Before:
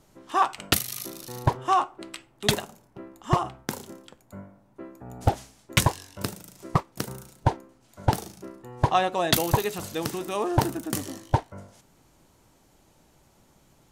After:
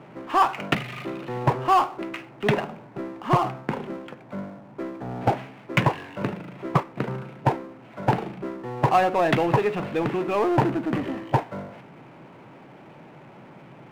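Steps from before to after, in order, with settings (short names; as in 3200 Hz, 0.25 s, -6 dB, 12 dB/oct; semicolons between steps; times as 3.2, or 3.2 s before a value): elliptic band-pass 130–2500 Hz; power-law curve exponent 0.7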